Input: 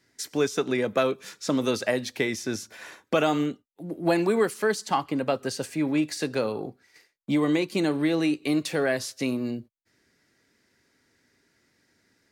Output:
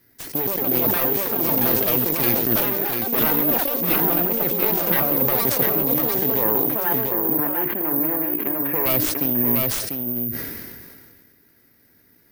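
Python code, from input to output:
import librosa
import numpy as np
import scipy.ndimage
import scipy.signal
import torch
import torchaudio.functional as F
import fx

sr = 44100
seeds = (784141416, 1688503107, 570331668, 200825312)

y = fx.self_delay(x, sr, depth_ms=0.62)
y = fx.tilt_eq(y, sr, slope=-1.5)
y = fx.over_compress(y, sr, threshold_db=-27.0, ratio=-1.0)
y = fx.echo_pitch(y, sr, ms=211, semitones=5, count=2, db_per_echo=-3.0)
y = fx.cabinet(y, sr, low_hz=150.0, low_slope=12, high_hz=2300.0, hz=(180.0, 1000.0, 1700.0), db=(-7, 7, 7), at=(6.43, 8.86))
y = y + 10.0 ** (-5.5 / 20.0) * np.pad(y, (int(695 * sr / 1000.0), 0))[:len(y)]
y = (np.kron(scipy.signal.resample_poly(y, 1, 3), np.eye(3)[0]) * 3)[:len(y)]
y = fx.sustainer(y, sr, db_per_s=29.0)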